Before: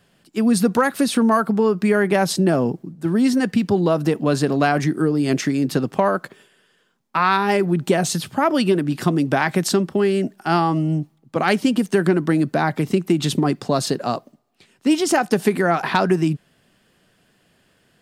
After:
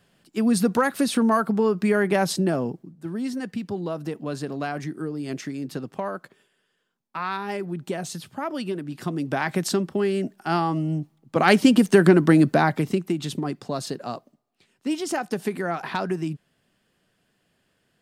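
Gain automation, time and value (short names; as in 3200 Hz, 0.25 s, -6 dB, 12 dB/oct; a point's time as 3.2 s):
2.27 s -3.5 dB
3.13 s -11.5 dB
8.91 s -11.5 dB
9.52 s -5 dB
11.01 s -5 dB
11.57 s +2.5 dB
12.47 s +2.5 dB
13.24 s -9 dB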